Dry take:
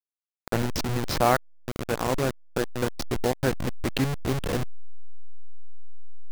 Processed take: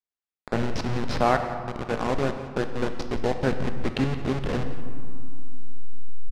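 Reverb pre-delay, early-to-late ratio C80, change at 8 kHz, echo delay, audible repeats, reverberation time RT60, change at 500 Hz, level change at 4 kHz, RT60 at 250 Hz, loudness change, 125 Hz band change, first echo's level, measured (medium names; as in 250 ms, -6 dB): 3 ms, 9.0 dB, -9.0 dB, 175 ms, 1, 2.4 s, +0.5 dB, -3.0 dB, 3.5 s, 0.0 dB, 0.0 dB, -16.0 dB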